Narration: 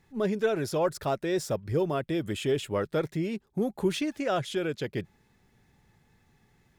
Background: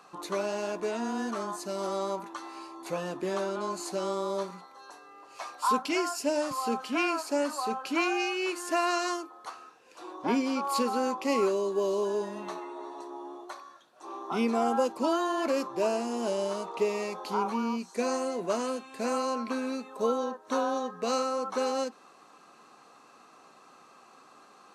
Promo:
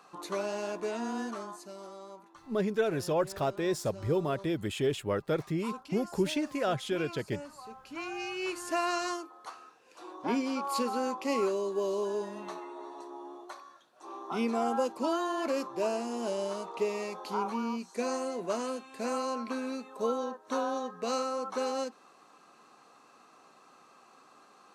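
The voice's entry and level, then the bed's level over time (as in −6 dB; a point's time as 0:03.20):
2.35 s, −2.0 dB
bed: 0:01.19 −2.5 dB
0:01.97 −15.5 dB
0:07.81 −15.5 dB
0:08.48 −3 dB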